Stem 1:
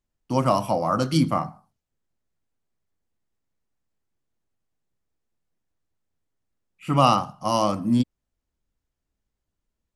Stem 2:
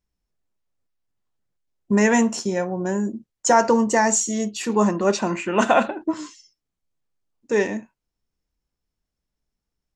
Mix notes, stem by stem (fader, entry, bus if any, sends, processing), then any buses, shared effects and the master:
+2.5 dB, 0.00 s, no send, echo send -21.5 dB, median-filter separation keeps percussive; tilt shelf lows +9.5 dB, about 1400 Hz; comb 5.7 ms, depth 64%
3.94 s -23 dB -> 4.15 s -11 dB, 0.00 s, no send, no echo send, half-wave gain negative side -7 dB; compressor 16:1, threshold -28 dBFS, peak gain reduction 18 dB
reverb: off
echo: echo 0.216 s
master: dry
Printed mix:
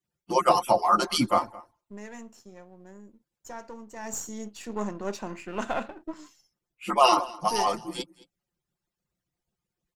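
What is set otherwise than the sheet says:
stem 1: missing tilt shelf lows +9.5 dB, about 1400 Hz; stem 2: missing compressor 16:1, threshold -28 dBFS, peak gain reduction 18 dB

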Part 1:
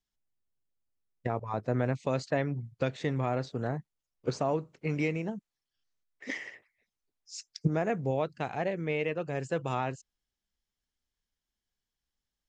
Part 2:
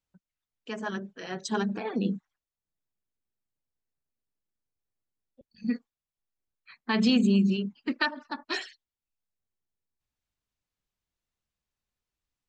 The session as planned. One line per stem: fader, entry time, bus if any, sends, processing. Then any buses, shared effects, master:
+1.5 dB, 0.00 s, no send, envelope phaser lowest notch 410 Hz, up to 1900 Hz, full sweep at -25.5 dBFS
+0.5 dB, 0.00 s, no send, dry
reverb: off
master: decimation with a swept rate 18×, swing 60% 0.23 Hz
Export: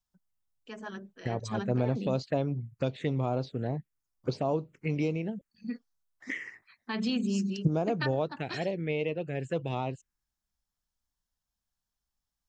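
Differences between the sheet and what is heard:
stem 2 +0.5 dB -> -7.5 dB; master: missing decimation with a swept rate 18×, swing 60% 0.23 Hz

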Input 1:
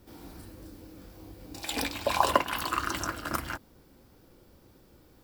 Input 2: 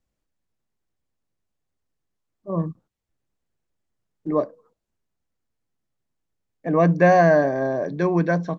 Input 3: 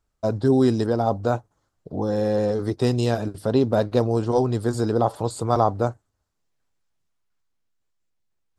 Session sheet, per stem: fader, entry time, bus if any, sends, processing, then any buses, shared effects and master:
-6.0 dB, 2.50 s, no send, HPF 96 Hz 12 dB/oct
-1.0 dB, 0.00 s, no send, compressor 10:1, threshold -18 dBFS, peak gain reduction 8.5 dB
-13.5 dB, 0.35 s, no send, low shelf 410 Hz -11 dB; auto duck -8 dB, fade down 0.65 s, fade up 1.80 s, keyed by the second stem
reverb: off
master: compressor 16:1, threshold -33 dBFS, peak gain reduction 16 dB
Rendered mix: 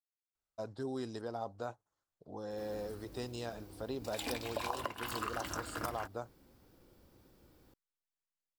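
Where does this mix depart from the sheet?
stem 1: missing HPF 96 Hz 12 dB/oct; stem 2: muted

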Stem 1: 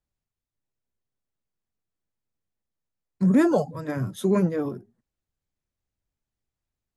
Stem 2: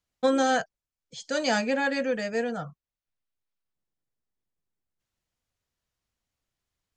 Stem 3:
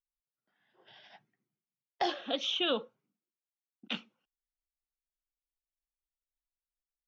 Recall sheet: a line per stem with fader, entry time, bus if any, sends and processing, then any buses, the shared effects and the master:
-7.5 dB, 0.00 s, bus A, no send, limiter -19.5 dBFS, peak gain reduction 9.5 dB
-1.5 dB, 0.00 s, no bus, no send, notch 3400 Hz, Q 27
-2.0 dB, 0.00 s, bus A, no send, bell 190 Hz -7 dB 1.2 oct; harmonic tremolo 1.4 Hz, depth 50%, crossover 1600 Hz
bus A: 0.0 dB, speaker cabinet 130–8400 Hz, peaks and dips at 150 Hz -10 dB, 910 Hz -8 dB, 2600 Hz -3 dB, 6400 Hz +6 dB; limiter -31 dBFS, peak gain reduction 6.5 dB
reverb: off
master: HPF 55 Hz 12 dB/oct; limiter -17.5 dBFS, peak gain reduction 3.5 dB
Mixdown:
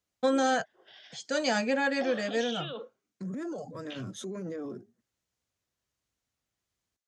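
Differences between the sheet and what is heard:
stem 1 -7.5 dB -> -1.0 dB; stem 2: missing notch 3400 Hz, Q 27; stem 3 -2.0 dB -> +6.5 dB

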